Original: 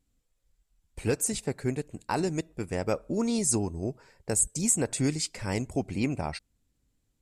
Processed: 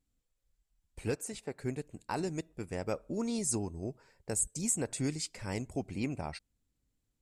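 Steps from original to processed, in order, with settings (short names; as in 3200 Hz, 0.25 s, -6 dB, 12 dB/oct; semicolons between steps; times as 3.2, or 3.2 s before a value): 1.15–1.59 tone controls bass -8 dB, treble -7 dB; gain -6.5 dB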